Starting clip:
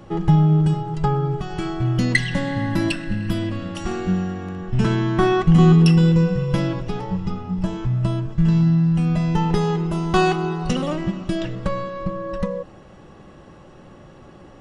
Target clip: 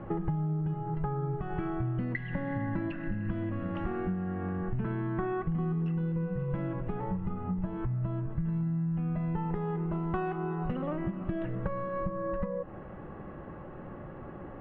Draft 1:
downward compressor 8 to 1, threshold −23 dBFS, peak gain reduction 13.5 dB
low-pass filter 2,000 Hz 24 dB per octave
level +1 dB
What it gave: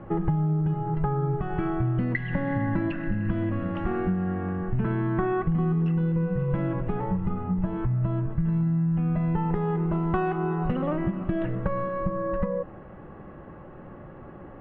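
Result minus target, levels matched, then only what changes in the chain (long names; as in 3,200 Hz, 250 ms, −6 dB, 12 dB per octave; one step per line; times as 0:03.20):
downward compressor: peak gain reduction −6.5 dB
change: downward compressor 8 to 1, threshold −30.5 dBFS, peak gain reduction 20.5 dB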